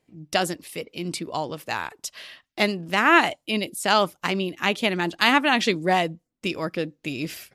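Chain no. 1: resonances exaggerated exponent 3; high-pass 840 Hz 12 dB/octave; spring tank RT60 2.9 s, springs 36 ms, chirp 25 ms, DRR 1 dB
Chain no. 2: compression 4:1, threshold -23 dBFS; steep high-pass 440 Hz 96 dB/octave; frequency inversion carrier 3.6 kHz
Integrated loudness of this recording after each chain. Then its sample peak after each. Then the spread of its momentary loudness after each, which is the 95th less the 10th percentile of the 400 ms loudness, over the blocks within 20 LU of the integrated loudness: -22.5 LUFS, -29.5 LUFS; -3.5 dBFS, -11.5 dBFS; 18 LU, 12 LU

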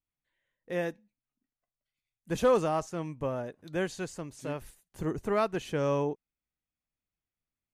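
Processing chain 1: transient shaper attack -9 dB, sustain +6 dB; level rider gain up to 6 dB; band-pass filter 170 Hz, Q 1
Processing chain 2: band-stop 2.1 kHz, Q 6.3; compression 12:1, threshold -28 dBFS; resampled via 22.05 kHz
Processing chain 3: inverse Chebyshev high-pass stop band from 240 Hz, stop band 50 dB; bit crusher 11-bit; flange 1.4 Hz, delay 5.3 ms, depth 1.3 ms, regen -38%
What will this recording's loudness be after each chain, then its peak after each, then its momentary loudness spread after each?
-33.5 LUFS, -36.0 LUFS, -41.0 LUFS; -16.5 dBFS, -19.5 dBFS, -22.0 dBFS; 12 LU, 7 LU, 14 LU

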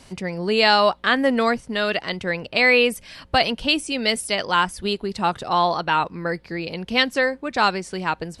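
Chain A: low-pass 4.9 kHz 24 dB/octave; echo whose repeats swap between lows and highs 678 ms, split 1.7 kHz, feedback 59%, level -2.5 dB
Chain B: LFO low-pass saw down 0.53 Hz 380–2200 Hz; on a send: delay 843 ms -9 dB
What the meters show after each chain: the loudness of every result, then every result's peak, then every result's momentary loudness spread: -19.5 LUFS, -19.5 LUFS; -3.0 dBFS, -2.5 dBFS; 7 LU, 9 LU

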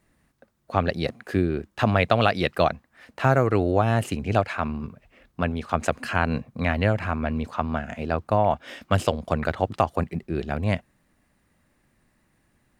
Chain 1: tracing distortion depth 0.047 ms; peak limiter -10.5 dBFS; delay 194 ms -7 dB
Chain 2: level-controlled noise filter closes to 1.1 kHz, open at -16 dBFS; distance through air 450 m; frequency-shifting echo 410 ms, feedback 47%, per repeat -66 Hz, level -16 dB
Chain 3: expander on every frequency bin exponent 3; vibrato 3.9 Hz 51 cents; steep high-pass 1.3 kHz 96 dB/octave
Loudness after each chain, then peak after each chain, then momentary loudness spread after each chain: -26.5 LUFS, -26.5 LUFS, -39.5 LUFS; -8.0 dBFS, -6.0 dBFS, -14.0 dBFS; 7 LU, 9 LU, 23 LU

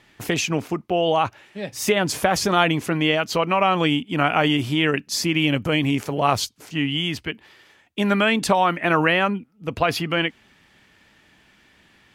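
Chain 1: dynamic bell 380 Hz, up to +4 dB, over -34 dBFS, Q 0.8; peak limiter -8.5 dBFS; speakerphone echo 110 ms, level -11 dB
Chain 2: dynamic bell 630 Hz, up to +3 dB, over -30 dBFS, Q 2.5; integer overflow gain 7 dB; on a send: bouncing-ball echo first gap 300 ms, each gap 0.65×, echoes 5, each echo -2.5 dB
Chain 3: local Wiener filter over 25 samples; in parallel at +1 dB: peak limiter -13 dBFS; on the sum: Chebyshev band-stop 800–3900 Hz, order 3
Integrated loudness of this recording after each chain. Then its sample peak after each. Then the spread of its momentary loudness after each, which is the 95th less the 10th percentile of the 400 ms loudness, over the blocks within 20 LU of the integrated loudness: -20.5 LUFS, -17.5 LUFS, -19.5 LUFS; -7.5 dBFS, -2.5 dBFS, -5.0 dBFS; 8 LU, 8 LU, 8 LU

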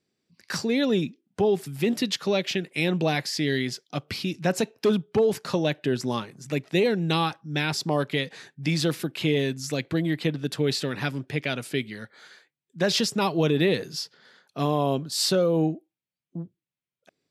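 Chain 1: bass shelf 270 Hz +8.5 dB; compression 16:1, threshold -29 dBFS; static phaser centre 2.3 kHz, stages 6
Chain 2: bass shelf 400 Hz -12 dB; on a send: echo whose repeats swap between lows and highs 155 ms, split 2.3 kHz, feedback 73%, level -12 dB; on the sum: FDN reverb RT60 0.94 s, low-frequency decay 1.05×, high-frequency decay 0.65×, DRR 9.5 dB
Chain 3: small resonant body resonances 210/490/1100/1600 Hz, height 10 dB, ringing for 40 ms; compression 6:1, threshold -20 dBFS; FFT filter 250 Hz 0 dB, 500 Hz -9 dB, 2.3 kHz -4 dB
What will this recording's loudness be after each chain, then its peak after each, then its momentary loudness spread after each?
-37.0 LUFS, -29.0 LUFS, -29.0 LUFS; -20.0 dBFS, -13.0 dBFS, -12.5 dBFS; 6 LU, 10 LU, 8 LU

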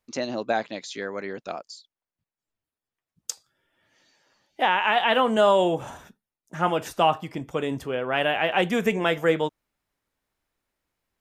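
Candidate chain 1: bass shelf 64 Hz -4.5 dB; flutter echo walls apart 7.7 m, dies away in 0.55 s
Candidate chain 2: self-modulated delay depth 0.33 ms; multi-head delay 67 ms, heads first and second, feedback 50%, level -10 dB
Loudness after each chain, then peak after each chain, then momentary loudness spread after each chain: -22.5 LUFS, -24.0 LUFS; -5.5 dBFS, -6.5 dBFS; 17 LU, 18 LU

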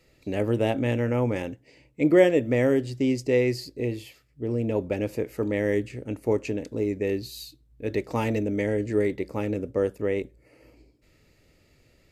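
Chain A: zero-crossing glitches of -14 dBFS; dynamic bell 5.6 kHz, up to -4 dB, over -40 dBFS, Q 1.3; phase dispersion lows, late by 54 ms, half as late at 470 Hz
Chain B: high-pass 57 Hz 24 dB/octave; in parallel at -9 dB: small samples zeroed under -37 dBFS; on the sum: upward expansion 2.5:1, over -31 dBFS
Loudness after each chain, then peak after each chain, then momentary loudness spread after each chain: -23.0 LUFS, -29.5 LUFS; -5.5 dBFS, -4.0 dBFS; 7 LU, 22 LU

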